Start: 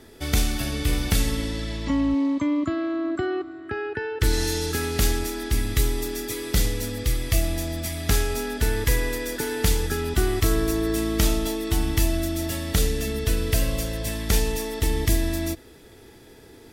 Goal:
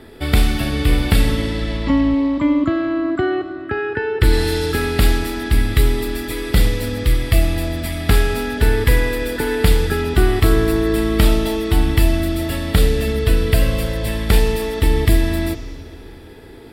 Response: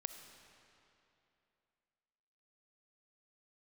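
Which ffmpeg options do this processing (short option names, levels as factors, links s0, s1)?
-filter_complex "[0:a]asplit=2[s0][s1];[s1]lowpass=f=6200:w=0.5412,lowpass=f=6200:w=1.3066[s2];[1:a]atrim=start_sample=2205[s3];[s2][s3]afir=irnorm=-1:irlink=0,volume=2[s4];[s0][s4]amix=inputs=2:normalize=0"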